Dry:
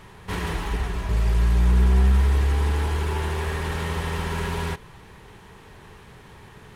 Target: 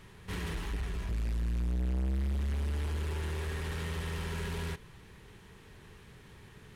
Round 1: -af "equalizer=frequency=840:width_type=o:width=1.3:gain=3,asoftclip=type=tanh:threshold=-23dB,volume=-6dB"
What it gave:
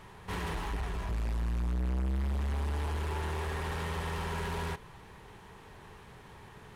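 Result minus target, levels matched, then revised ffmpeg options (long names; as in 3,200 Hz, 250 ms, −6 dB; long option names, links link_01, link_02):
1,000 Hz band +7.5 dB
-af "equalizer=frequency=840:width_type=o:width=1.3:gain=-7.5,asoftclip=type=tanh:threshold=-23dB,volume=-6dB"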